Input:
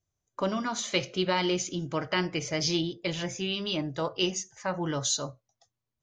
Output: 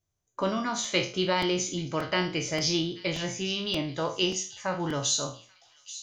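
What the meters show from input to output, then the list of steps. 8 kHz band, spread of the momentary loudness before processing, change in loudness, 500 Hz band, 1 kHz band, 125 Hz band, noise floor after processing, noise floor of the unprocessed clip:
+2.5 dB, 6 LU, +1.5 dB, +1.0 dB, +1.0 dB, +0.5 dB, -79 dBFS, under -85 dBFS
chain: spectral sustain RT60 0.37 s; feedback echo behind a high-pass 835 ms, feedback 51%, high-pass 3.7 kHz, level -13 dB; crackling interface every 0.58 s, samples 128, repeat, from 0.84 s

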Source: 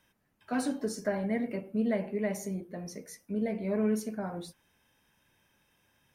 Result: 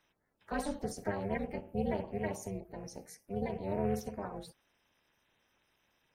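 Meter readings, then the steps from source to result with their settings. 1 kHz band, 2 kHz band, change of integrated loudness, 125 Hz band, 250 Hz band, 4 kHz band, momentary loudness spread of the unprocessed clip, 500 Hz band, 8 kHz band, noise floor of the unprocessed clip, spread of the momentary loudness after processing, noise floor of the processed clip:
+1.0 dB, -3.5 dB, -5.0 dB, -1.5 dB, -7.0 dB, -4.5 dB, 12 LU, -3.5 dB, -5.0 dB, -73 dBFS, 12 LU, -77 dBFS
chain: coarse spectral quantiser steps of 30 dB; AM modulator 300 Hz, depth 90%

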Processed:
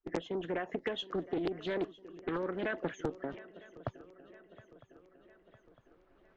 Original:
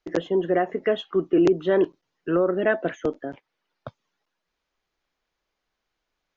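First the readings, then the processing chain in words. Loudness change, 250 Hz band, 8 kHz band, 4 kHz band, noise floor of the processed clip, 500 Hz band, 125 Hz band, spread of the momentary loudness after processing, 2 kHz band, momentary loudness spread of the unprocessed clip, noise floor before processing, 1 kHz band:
-14.5 dB, -13.5 dB, no reading, -4.5 dB, -67 dBFS, -14.5 dB, -9.5 dB, 19 LU, -10.0 dB, 10 LU, -82 dBFS, -11.0 dB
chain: recorder AGC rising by 6.9 dB/s; level-controlled noise filter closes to 1.3 kHz, open at -21 dBFS; bass shelf 110 Hz +9 dB; harmonic-percussive split harmonic -9 dB; treble shelf 3.5 kHz +6.5 dB; compression 6:1, threshold -25 dBFS, peak gain reduction 7.5 dB; on a send: shuffle delay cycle 956 ms, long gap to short 3:1, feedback 52%, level -19 dB; on the sum: loudspeaker Doppler distortion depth 0.51 ms; trim -5.5 dB

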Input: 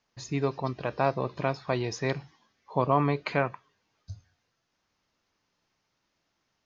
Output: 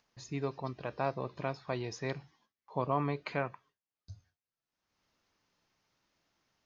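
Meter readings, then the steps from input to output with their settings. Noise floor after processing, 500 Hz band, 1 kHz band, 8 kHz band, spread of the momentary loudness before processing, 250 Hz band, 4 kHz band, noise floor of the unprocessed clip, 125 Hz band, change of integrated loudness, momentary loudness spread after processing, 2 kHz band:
under -85 dBFS, -7.5 dB, -7.5 dB, no reading, 16 LU, -7.5 dB, -7.5 dB, -78 dBFS, -7.5 dB, -7.5 dB, 16 LU, -7.5 dB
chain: gate with hold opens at -54 dBFS; upward compressor, threshold -48 dBFS; trim -7.5 dB

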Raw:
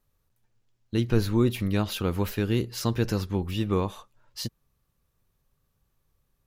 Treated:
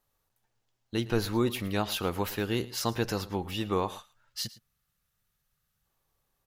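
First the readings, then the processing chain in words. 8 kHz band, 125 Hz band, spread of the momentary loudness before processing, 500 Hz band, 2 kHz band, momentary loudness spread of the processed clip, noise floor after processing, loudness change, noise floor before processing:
+1.0 dB, -8.0 dB, 12 LU, -2.0 dB, +0.5 dB, 8 LU, -79 dBFS, -3.5 dB, -74 dBFS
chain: peaking EQ 770 Hz +5 dB 0.49 oct; band-stop 2.4 kHz, Q 27; delay 111 ms -18.5 dB; time-frequency box 3.99–5.86 s, 230–1200 Hz -9 dB; bass shelf 310 Hz -10.5 dB; trim +1 dB

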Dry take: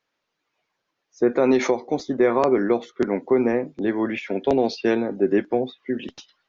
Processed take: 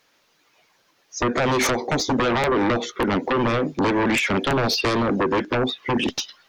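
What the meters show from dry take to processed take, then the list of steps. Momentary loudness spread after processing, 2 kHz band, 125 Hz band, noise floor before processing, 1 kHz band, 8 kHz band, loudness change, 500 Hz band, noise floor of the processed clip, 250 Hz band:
4 LU, +7.5 dB, +9.0 dB, -79 dBFS, +5.5 dB, no reading, +0.5 dB, -2.5 dB, -64 dBFS, -0.5 dB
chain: treble shelf 5 kHz +9 dB; compression 8:1, threshold -22 dBFS, peak gain reduction 9.5 dB; sine folder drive 14 dB, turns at -12 dBFS; trim -4.5 dB

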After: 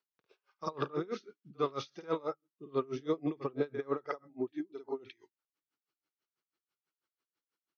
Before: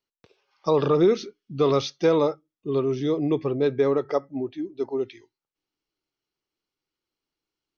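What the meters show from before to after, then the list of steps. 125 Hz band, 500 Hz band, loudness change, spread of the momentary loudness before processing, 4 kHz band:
-15.0 dB, -14.0 dB, -13.5 dB, 12 LU, -14.0 dB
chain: high-pass 130 Hz; peaking EQ 1.4 kHz +9 dB 1 oct; compression, threshold -21 dBFS, peak gain reduction 8 dB; pre-echo 50 ms -12 dB; logarithmic tremolo 6.1 Hz, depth 27 dB; trim -3.5 dB

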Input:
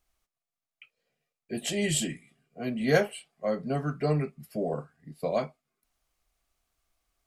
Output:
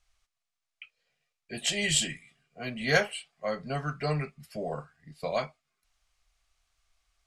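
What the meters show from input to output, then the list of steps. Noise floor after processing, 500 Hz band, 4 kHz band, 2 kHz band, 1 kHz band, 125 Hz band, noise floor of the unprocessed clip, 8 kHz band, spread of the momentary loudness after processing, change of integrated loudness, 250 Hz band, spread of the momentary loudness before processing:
under -85 dBFS, -3.5 dB, +5.5 dB, +4.5 dB, +0.5 dB, -3.0 dB, under -85 dBFS, +2.5 dB, 15 LU, -0.5 dB, -6.0 dB, 12 LU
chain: low-pass 7.2 kHz 12 dB/octave; peaking EQ 290 Hz -14.5 dB 2.6 oct; trim +6.5 dB

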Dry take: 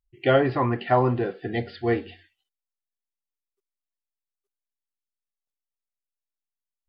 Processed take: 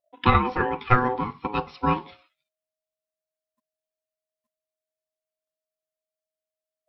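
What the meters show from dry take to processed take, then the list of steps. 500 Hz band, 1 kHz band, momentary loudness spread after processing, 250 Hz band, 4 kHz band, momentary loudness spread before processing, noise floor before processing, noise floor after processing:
-6.5 dB, +4.0 dB, 9 LU, -1.5 dB, +0.5 dB, 8 LU, under -85 dBFS, under -85 dBFS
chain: ring modulator 630 Hz; transient shaper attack +7 dB, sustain 0 dB

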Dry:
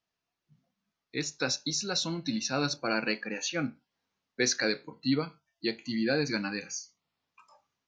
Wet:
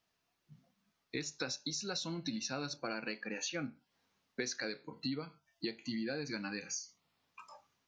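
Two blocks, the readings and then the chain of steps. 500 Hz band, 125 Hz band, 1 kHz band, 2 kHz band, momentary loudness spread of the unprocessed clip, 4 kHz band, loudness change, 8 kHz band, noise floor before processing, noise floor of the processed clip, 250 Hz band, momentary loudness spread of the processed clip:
-9.5 dB, -9.0 dB, -9.0 dB, -9.0 dB, 10 LU, -8.5 dB, -8.5 dB, -7.5 dB, under -85 dBFS, -82 dBFS, -8.5 dB, 10 LU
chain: compression 6:1, threshold -42 dBFS, peak gain reduction 18.5 dB; trim +5 dB

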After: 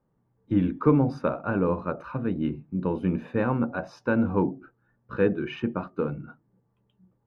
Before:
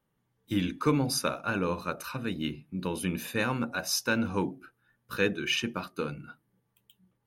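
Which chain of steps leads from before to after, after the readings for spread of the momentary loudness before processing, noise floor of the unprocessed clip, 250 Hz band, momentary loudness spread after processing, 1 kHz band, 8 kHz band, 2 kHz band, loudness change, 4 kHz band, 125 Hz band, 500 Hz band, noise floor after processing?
9 LU, -77 dBFS, +6.0 dB, 8 LU, +2.0 dB, under -25 dB, -3.5 dB, +3.5 dB, under -15 dB, +6.0 dB, +6.0 dB, -72 dBFS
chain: low-pass 1 kHz 12 dB/octave; trim +6 dB

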